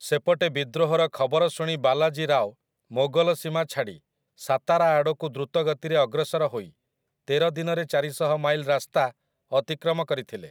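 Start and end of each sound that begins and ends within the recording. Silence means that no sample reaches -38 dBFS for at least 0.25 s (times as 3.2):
2.91–3.95
4.41–6.66
7.28–9.1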